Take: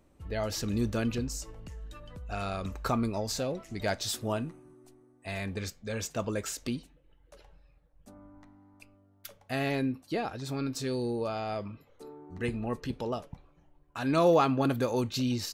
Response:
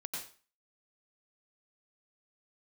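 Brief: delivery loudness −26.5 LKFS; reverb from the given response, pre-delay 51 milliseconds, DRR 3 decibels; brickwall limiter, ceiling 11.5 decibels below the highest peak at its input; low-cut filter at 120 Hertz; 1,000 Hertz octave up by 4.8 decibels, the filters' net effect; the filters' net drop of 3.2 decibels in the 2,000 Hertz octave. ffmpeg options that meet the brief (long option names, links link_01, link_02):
-filter_complex "[0:a]highpass=120,equalizer=frequency=1000:width_type=o:gain=8.5,equalizer=frequency=2000:width_type=o:gain=-7.5,alimiter=limit=-21dB:level=0:latency=1,asplit=2[link_01][link_02];[1:a]atrim=start_sample=2205,adelay=51[link_03];[link_02][link_03]afir=irnorm=-1:irlink=0,volume=-3dB[link_04];[link_01][link_04]amix=inputs=2:normalize=0,volume=5.5dB"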